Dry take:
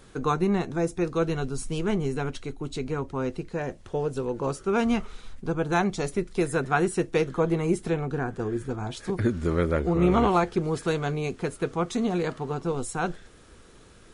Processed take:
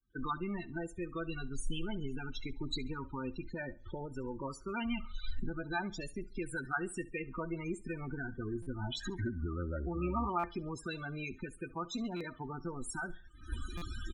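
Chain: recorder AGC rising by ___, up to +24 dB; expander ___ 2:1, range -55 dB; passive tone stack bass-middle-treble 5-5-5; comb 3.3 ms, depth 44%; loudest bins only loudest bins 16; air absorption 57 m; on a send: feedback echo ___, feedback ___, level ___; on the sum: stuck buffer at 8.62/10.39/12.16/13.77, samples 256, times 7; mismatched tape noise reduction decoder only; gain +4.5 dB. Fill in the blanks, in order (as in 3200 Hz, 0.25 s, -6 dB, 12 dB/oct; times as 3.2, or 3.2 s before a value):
52 dB/s, -26 dBFS, 69 ms, 35%, -21 dB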